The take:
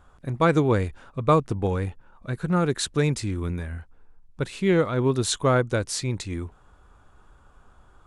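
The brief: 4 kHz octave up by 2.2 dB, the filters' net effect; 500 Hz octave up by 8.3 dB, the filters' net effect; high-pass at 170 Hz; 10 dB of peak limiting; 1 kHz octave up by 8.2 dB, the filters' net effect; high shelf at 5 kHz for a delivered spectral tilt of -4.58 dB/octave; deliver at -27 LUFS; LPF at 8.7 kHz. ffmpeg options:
-af "highpass=170,lowpass=8700,equalizer=f=500:t=o:g=8,equalizer=f=1000:t=o:g=8.5,equalizer=f=4000:t=o:g=5.5,highshelf=f=5000:g=-8,volume=0.596,alimiter=limit=0.211:level=0:latency=1"

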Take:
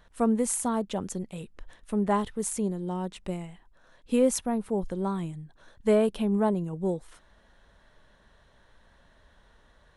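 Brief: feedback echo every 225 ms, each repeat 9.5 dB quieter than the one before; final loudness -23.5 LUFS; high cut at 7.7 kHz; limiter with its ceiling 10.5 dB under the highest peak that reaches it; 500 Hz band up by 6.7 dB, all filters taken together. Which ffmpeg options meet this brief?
-af "lowpass=7700,equalizer=f=500:t=o:g=8,alimiter=limit=0.133:level=0:latency=1,aecho=1:1:225|450|675|900:0.335|0.111|0.0365|0.012,volume=1.78"

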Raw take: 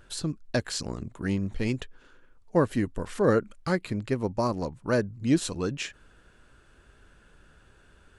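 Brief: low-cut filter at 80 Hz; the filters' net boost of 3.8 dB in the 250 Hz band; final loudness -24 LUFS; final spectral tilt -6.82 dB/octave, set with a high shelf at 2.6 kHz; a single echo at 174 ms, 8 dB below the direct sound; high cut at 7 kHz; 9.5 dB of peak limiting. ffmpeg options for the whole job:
-af "highpass=80,lowpass=7000,equalizer=f=250:t=o:g=5,highshelf=f=2600:g=-7.5,alimiter=limit=0.119:level=0:latency=1,aecho=1:1:174:0.398,volume=2.11"

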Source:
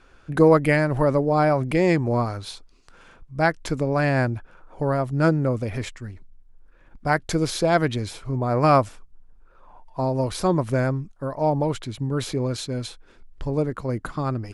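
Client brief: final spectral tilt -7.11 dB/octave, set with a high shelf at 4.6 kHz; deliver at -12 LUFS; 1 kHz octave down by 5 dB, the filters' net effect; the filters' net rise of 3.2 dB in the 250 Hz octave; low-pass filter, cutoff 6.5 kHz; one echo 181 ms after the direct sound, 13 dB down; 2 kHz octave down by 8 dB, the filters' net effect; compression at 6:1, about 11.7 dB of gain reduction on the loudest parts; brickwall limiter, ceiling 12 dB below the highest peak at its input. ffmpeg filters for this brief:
-af "lowpass=6500,equalizer=f=250:t=o:g=5,equalizer=f=1000:t=o:g=-5.5,equalizer=f=2000:t=o:g=-7,highshelf=f=4600:g=-8.5,acompressor=threshold=0.0794:ratio=6,alimiter=level_in=1.12:limit=0.0631:level=0:latency=1,volume=0.891,aecho=1:1:181:0.224,volume=13.3"

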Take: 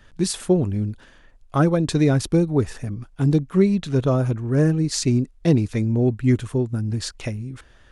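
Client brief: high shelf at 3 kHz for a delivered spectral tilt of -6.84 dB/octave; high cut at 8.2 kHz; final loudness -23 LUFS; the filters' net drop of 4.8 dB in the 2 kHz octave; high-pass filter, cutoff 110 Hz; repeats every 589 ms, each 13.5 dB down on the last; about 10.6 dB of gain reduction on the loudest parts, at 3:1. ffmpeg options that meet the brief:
-af "highpass=110,lowpass=8200,equalizer=f=2000:t=o:g=-5.5,highshelf=f=3000:g=-3,acompressor=threshold=0.0398:ratio=3,aecho=1:1:589|1178:0.211|0.0444,volume=2.51"

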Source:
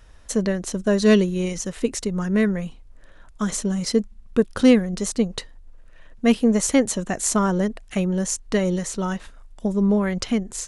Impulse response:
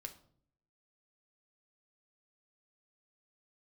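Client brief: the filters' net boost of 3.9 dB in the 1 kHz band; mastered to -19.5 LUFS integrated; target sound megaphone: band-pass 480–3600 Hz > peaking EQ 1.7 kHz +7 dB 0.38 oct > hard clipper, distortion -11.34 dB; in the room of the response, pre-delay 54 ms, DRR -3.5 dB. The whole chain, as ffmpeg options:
-filter_complex "[0:a]equalizer=f=1000:t=o:g=4.5,asplit=2[s0][s1];[1:a]atrim=start_sample=2205,adelay=54[s2];[s1][s2]afir=irnorm=-1:irlink=0,volume=2.37[s3];[s0][s3]amix=inputs=2:normalize=0,highpass=480,lowpass=3600,equalizer=f=1700:t=o:w=0.38:g=7,asoftclip=type=hard:threshold=0.188,volume=1.58"

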